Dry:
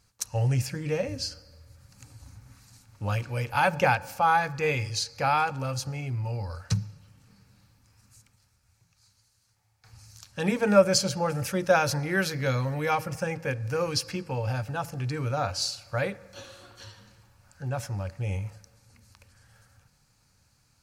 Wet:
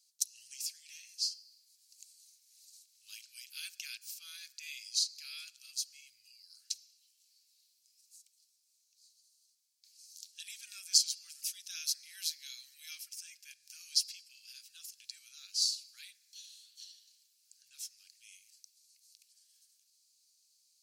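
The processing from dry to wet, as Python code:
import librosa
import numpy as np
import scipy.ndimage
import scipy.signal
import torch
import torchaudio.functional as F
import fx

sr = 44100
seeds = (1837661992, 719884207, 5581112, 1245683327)

y = scipy.signal.sosfilt(scipy.signal.cheby2(4, 70, 840.0, 'highpass', fs=sr, output='sos'), x)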